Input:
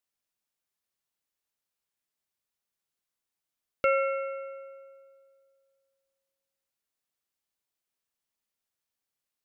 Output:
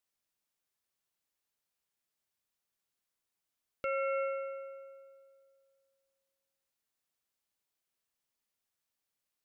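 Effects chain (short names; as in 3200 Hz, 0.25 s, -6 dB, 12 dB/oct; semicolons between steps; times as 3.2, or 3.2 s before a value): limiter -26 dBFS, peak gain reduction 11.5 dB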